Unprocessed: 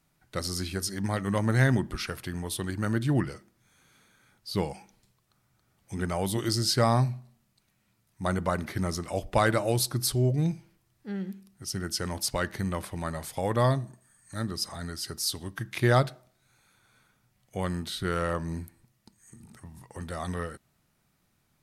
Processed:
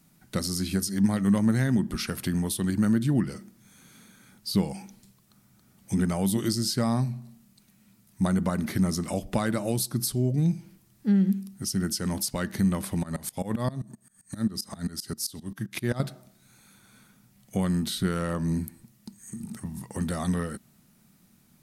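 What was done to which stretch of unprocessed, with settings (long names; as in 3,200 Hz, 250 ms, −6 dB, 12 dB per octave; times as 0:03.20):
0:13.03–0:16.00: tremolo with a ramp in dB swelling 7.6 Hz, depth 23 dB
whole clip: high-shelf EQ 5,100 Hz +9.5 dB; downward compressor 3 to 1, threshold −34 dBFS; parametric band 210 Hz +13.5 dB 0.97 octaves; level +3.5 dB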